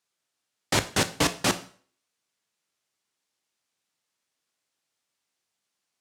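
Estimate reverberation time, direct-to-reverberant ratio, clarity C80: 0.45 s, 9.5 dB, 19.0 dB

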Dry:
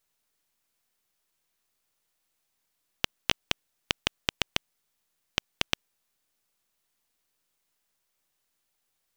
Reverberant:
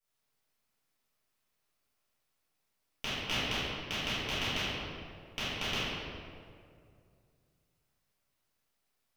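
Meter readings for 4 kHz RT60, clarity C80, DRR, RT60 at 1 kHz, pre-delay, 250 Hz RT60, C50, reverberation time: 1.3 s, -2.0 dB, -15.5 dB, 2.0 s, 4 ms, 2.6 s, -5.0 dB, 2.3 s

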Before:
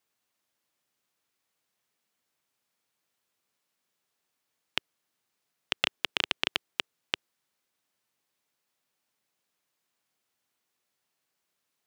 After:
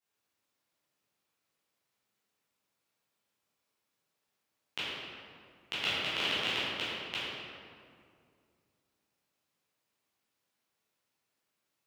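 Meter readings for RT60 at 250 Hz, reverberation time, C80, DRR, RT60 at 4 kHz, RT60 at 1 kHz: 2.7 s, 2.2 s, -1.5 dB, -11.5 dB, 1.3 s, 2.1 s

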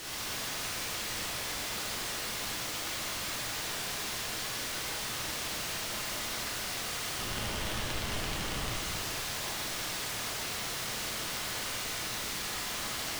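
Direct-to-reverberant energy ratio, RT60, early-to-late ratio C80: -7.0 dB, 2.2 s, -0.5 dB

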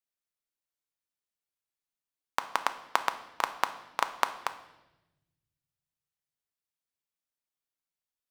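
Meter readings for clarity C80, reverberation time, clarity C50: 15.0 dB, 1.0 s, 13.0 dB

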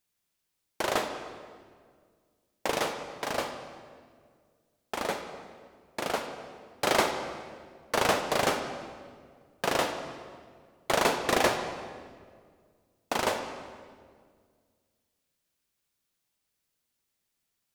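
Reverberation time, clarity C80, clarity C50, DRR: 1.9 s, 8.5 dB, 7.0 dB, 6.5 dB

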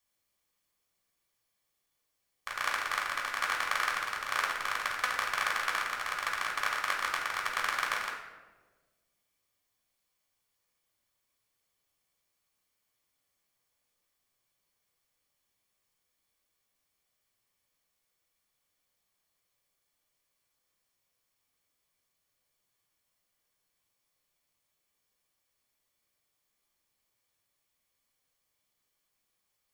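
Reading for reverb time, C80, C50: 1.4 s, 7.0 dB, 4.5 dB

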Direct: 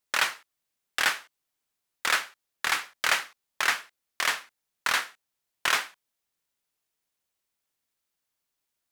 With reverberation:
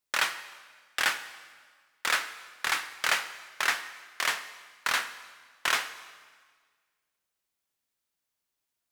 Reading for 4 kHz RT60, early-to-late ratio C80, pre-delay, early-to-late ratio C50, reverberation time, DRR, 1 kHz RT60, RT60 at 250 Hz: 1.5 s, 13.5 dB, 6 ms, 12.5 dB, 1.6 s, 11.0 dB, 1.6 s, 1.6 s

